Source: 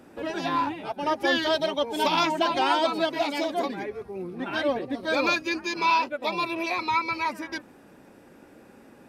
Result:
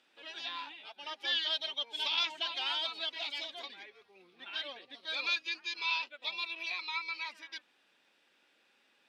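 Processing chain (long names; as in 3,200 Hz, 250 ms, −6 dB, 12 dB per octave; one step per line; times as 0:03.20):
resonant band-pass 3,400 Hz, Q 2.6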